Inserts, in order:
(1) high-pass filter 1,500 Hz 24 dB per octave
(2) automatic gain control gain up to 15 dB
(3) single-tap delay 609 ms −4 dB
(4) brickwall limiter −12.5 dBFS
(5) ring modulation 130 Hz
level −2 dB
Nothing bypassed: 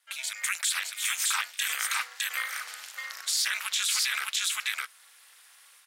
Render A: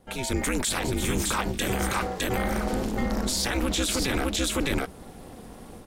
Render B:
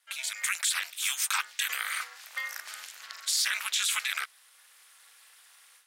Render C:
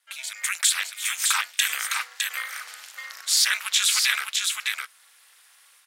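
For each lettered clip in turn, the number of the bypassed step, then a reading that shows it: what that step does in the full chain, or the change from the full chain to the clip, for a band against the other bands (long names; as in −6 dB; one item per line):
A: 1, 500 Hz band +32.0 dB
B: 3, change in momentary loudness spread +3 LU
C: 4, average gain reduction 2.0 dB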